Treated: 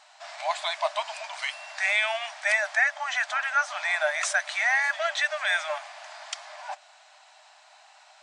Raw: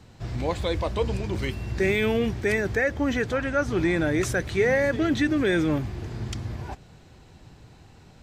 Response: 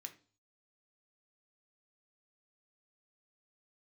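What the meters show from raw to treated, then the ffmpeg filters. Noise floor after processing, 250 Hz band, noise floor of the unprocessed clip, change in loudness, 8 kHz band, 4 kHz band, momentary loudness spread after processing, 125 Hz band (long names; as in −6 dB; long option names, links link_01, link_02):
−56 dBFS, below −40 dB, −51 dBFS, −0.5 dB, +4.5 dB, +4.5 dB, 15 LU, below −40 dB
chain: -af "afftfilt=real='re*between(b*sr/4096,590,10000)':imag='im*between(b*sr/4096,590,10000)':win_size=4096:overlap=0.75,volume=4.5dB"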